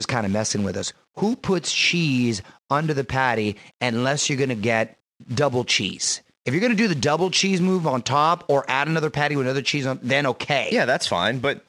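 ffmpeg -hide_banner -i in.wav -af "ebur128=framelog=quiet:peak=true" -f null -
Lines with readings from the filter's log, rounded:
Integrated loudness:
  I:         -21.8 LUFS
  Threshold: -31.8 LUFS
Loudness range:
  LRA:         2.3 LU
  Threshold: -41.8 LUFS
  LRA low:   -22.9 LUFS
  LRA high:  -20.7 LUFS
True peak:
  Peak:       -4.6 dBFS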